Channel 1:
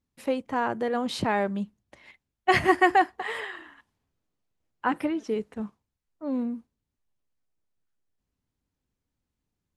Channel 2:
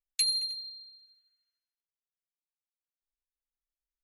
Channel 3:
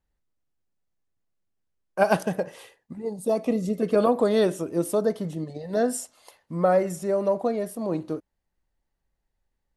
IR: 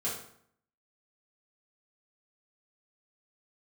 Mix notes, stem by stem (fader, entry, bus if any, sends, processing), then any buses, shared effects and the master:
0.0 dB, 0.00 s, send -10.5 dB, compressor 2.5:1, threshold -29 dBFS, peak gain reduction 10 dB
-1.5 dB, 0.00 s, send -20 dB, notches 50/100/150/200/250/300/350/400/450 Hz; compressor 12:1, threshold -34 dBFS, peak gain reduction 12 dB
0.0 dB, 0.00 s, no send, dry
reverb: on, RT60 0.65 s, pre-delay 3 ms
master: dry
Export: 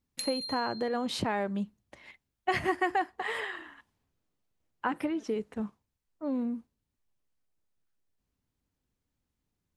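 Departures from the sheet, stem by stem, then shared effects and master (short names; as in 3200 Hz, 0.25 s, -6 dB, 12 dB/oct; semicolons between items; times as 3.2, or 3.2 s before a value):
stem 1: send off; stem 3: muted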